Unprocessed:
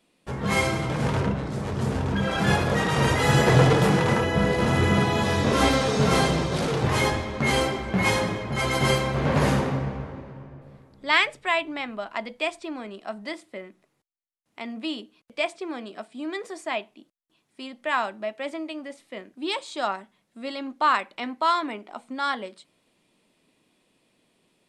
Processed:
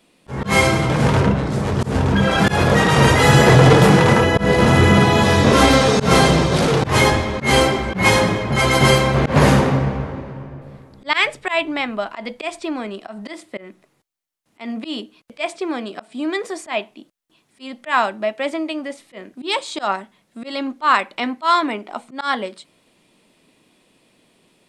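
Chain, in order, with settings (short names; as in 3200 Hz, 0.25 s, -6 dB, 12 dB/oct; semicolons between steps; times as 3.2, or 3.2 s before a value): auto swell 0.123 s; maximiser +10 dB; gain -1 dB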